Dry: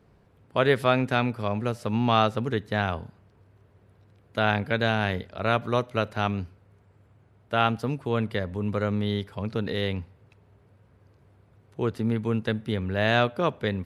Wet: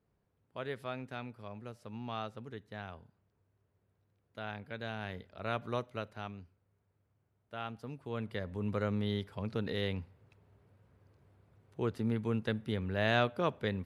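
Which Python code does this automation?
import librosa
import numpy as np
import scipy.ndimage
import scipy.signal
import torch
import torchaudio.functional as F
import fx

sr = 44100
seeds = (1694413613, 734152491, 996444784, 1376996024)

y = fx.gain(x, sr, db=fx.line((4.58, -18.5), (5.72, -10.5), (6.39, -18.5), (7.64, -18.5), (8.65, -7.0)))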